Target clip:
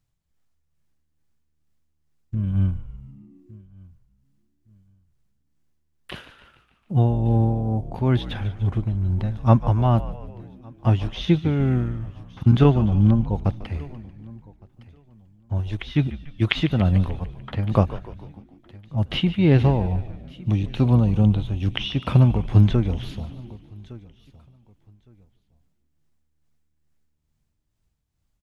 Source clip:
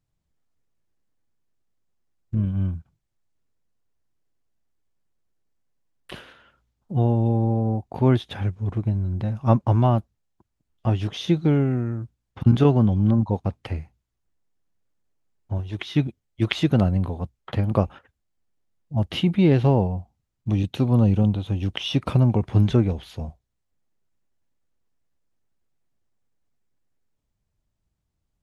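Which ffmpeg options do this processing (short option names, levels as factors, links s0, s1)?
-filter_complex "[0:a]equalizer=f=430:t=o:w=2.3:g=-4.5,asplit=2[s0][s1];[s1]aecho=0:1:1161|2322:0.0668|0.0167[s2];[s0][s2]amix=inputs=2:normalize=0,acrossover=split=4100[s3][s4];[s4]acompressor=threshold=0.002:ratio=4:attack=1:release=60[s5];[s3][s5]amix=inputs=2:normalize=0,tremolo=f=2.3:d=0.51,asplit=2[s6][s7];[s7]asplit=6[s8][s9][s10][s11][s12][s13];[s8]adelay=147,afreqshift=-76,volume=0.188[s14];[s9]adelay=294,afreqshift=-152,volume=0.11[s15];[s10]adelay=441,afreqshift=-228,volume=0.0631[s16];[s11]adelay=588,afreqshift=-304,volume=0.0367[s17];[s12]adelay=735,afreqshift=-380,volume=0.0214[s18];[s13]adelay=882,afreqshift=-456,volume=0.0123[s19];[s14][s15][s16][s17][s18][s19]amix=inputs=6:normalize=0[s20];[s6][s20]amix=inputs=2:normalize=0,volume=1.78"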